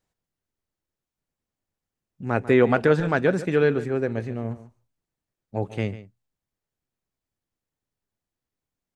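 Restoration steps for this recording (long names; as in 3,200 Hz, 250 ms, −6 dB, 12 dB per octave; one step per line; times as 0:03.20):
echo removal 143 ms −15.5 dB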